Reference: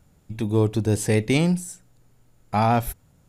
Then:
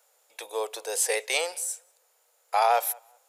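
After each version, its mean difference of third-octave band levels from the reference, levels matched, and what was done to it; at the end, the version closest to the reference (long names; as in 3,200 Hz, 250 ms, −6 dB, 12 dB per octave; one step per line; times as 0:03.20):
14.0 dB: Chebyshev high-pass filter 480 Hz, order 5
high-shelf EQ 5,200 Hz +7.5 dB
on a send: tape delay 192 ms, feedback 23%, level −24 dB, low-pass 2,700 Hz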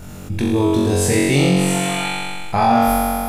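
8.5 dB: healed spectral selection 0:01.52–0:02.06, 570–4,400 Hz before
flutter between parallel walls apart 3.7 metres, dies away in 1.4 s
envelope flattener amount 50%
level −1 dB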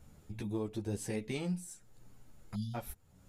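4.0 dB: time-frequency box erased 0:02.54–0:02.75, 240–2,900 Hz
downward compressor 2 to 1, threshold −47 dBFS, peak gain reduction 17 dB
string-ensemble chorus
level +2.5 dB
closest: third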